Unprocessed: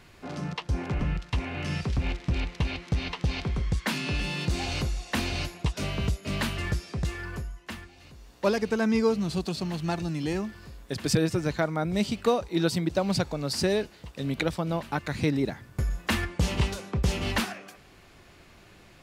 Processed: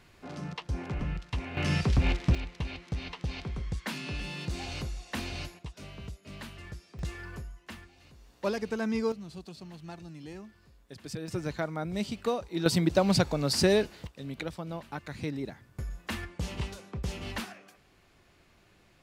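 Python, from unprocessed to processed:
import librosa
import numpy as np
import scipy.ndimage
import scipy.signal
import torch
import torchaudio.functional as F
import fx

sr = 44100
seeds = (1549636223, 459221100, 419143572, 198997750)

y = fx.gain(x, sr, db=fx.steps((0.0, -5.0), (1.57, 3.0), (2.35, -7.0), (5.59, -14.5), (6.99, -6.0), (9.12, -14.5), (11.28, -6.0), (12.66, 2.0), (14.07, -9.0)))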